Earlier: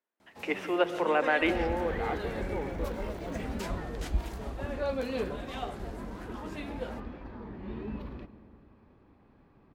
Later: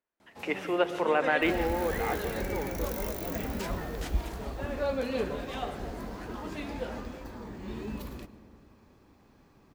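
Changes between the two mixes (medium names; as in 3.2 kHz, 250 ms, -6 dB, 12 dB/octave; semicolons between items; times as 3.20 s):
speech: remove steep high-pass 180 Hz 96 dB/octave; first sound: send +10.0 dB; second sound: remove distance through air 350 m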